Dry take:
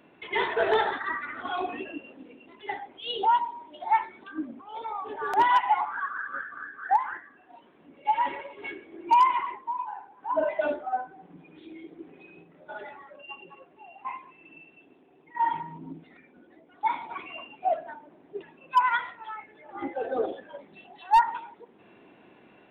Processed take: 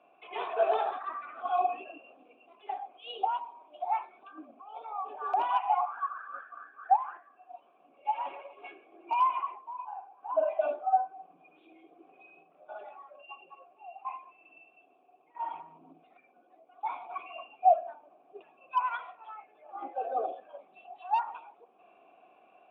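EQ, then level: vowel filter a; +6.0 dB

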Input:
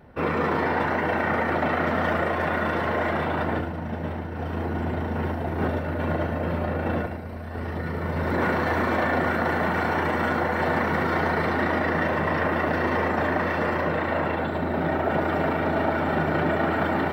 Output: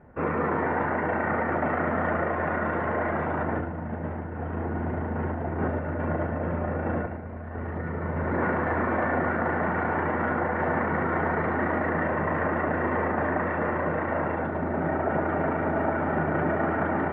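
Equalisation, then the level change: low-pass 2 kHz 24 dB/octave; -2.0 dB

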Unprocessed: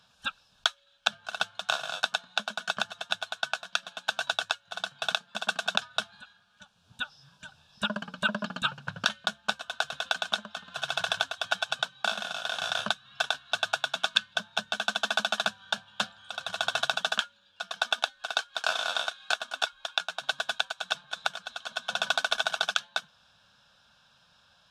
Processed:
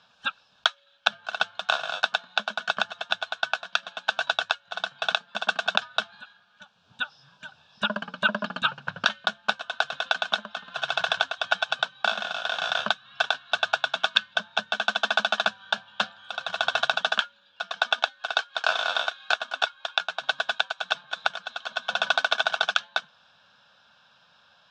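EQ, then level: high-pass 320 Hz 6 dB/octave; distance through air 140 m; +6.0 dB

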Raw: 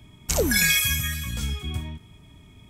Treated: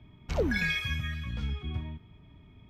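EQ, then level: distance through air 310 m; -4.0 dB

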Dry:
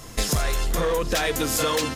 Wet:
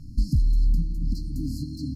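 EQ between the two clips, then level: brick-wall FIR band-stop 310–4100 Hz; distance through air 490 m; peaking EQ 240 Hz -4.5 dB 2 oct; +5.5 dB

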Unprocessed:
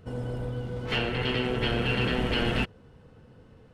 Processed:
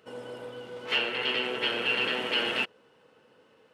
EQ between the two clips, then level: high-pass 440 Hz 12 dB/octave; peaking EQ 2.8 kHz +4.5 dB 0.47 oct; band-stop 720 Hz, Q 12; 0.0 dB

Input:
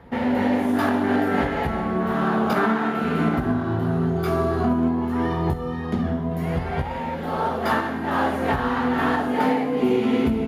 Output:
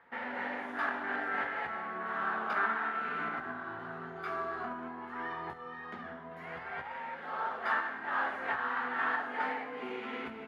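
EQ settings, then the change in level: band-pass filter 1.6 kHz, Q 1.7; -4.0 dB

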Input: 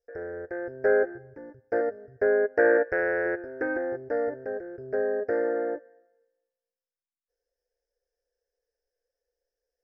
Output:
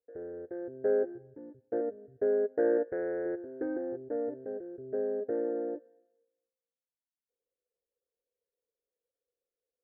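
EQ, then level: band-pass filter 260 Hz, Q 1.2; distance through air 250 m; 0.0 dB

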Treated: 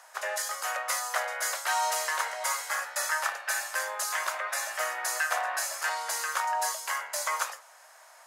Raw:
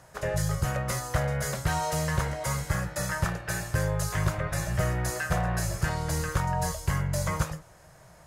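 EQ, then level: high-pass 750 Hz 24 dB/octave; +4.0 dB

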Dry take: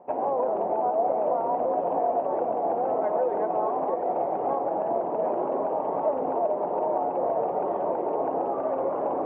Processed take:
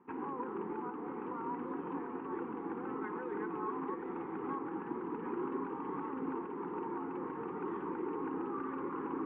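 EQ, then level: Chebyshev band-stop 310–1300 Hz, order 2; distance through air 260 m; bass shelf 200 Hz -10.5 dB; +2.5 dB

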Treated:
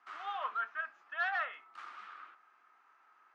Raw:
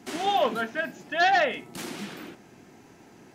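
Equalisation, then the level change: ladder band-pass 1.3 kHz, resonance 80%; 0.0 dB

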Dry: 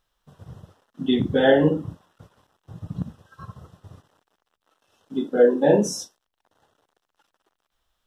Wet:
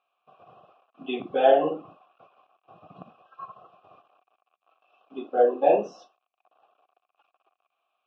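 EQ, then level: vowel filter a; cabinet simulation 140–4800 Hz, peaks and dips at 360 Hz +4 dB, 1.2 kHz +4 dB, 2.5 kHz +9 dB; +9.0 dB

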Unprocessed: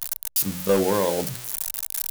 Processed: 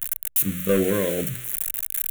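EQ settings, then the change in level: static phaser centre 2.1 kHz, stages 4; +3.0 dB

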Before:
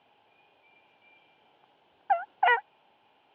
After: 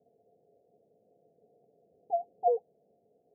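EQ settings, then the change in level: rippled Chebyshev low-pass 720 Hz, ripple 9 dB; peaking EQ 430 Hz +12 dB 0.21 oct; +4.5 dB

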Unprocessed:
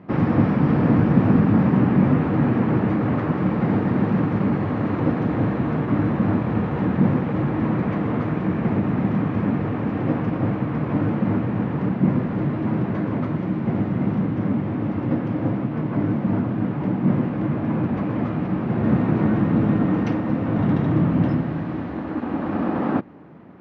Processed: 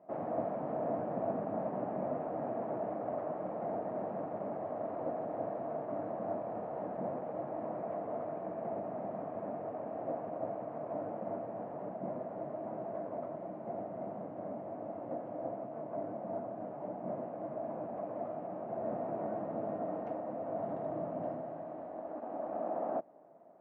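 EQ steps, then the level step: band-pass filter 650 Hz, Q 7.9; +1.0 dB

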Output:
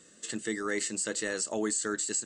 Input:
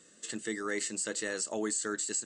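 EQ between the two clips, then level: bass shelf 130 Hz +5 dB; +2.0 dB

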